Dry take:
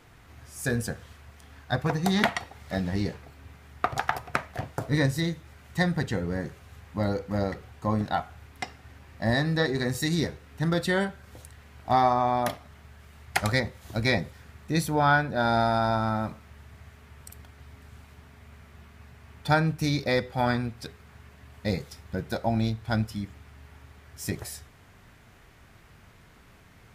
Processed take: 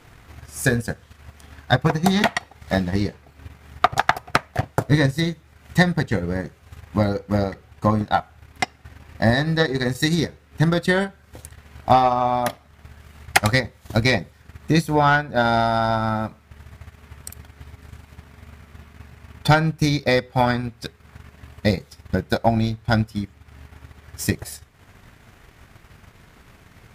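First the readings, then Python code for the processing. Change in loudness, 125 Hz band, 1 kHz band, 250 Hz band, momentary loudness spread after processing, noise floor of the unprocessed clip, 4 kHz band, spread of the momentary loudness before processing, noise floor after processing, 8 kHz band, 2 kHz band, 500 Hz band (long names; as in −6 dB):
+6.0 dB, +6.5 dB, +6.0 dB, +6.0 dB, 12 LU, −54 dBFS, +6.5 dB, 15 LU, −53 dBFS, +6.5 dB, +6.5 dB, +6.0 dB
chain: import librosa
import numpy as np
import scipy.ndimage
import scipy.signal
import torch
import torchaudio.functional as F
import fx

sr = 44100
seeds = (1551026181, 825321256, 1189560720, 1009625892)

y = fx.fold_sine(x, sr, drive_db=7, ceiling_db=-4.0)
y = fx.transient(y, sr, attack_db=7, sustain_db=-8)
y = F.gain(torch.from_numpy(y), -6.0).numpy()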